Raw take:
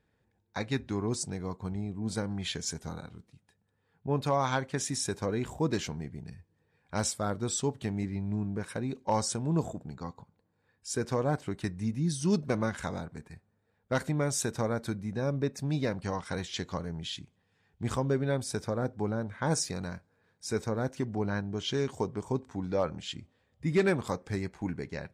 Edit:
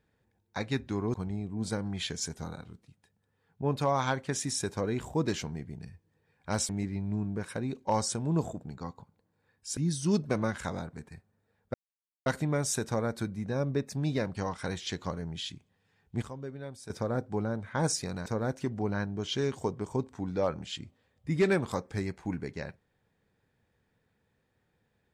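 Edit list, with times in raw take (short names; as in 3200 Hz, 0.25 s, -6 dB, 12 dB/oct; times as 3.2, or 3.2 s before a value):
1.14–1.59 cut
7.14–7.89 cut
10.97–11.96 cut
13.93 insert silence 0.52 s
17.89–18.57 gain -12 dB
19.93–20.62 cut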